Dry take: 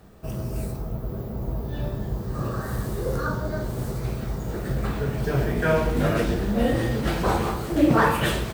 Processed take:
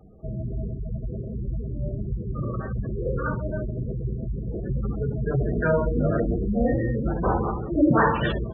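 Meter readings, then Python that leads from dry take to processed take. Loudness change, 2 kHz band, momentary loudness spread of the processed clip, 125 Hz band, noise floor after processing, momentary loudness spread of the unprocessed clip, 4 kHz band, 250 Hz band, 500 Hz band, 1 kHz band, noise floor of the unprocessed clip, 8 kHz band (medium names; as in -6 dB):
-0.5 dB, -3.0 dB, 10 LU, 0.0 dB, -33 dBFS, 10 LU, no reading, -0.5 dB, -0.5 dB, -1.5 dB, -33 dBFS, under -40 dB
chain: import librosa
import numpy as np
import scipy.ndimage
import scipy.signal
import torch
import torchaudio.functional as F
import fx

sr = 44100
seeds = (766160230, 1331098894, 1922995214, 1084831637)

y = fx.spec_gate(x, sr, threshold_db=-15, keep='strong')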